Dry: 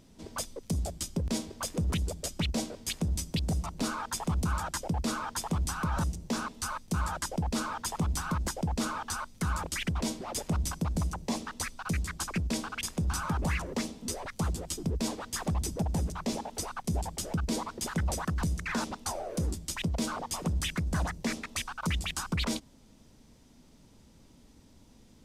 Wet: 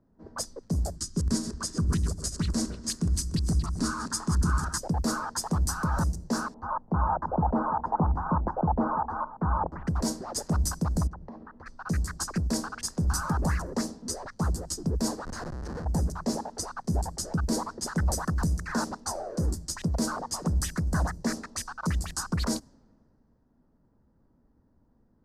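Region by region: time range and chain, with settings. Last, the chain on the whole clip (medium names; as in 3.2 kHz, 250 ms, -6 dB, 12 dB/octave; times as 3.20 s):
0.96–4.78 s: backward echo that repeats 149 ms, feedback 49%, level -8 dB + low-pass 11 kHz 24 dB/octave + high-order bell 650 Hz -9 dB 1.1 oct
6.54–9.87 s: resonant low-pass 880 Hz, resonance Q 2.6 + delay 339 ms -14.5 dB
11.07–11.66 s: low-pass 2 kHz + compression 5:1, threshold -40 dBFS
15.25–15.85 s: rippled EQ curve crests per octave 1.9, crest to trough 8 dB + compressor with a negative ratio -36 dBFS + Schmitt trigger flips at -38 dBFS
whole clip: level-controlled noise filter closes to 1.7 kHz, open at -29 dBFS; high-order bell 2.8 kHz -15 dB 1 oct; three bands expanded up and down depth 40%; trim +3.5 dB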